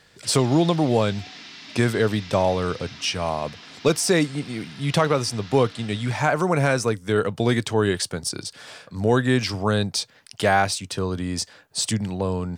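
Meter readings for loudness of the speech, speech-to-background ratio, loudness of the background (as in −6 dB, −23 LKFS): −23.0 LKFS, 18.0 dB, −41.0 LKFS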